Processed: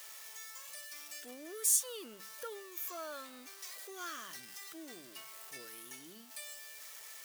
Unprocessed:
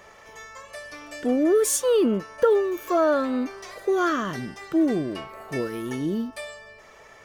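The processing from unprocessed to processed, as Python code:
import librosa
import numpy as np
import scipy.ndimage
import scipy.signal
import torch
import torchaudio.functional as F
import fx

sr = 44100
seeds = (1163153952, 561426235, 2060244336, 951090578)

y = x + 0.5 * 10.0 ** (-35.0 / 20.0) * np.sign(x)
y = librosa.effects.preemphasis(y, coef=0.97, zi=[0.0])
y = fx.hum_notches(y, sr, base_hz=50, count=4)
y = y * 10.0 ** (-5.0 / 20.0)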